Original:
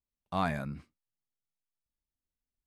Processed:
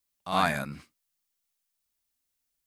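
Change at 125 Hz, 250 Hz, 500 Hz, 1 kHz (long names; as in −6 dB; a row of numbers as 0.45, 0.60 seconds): 0.0, +1.5, +5.0, +6.5 decibels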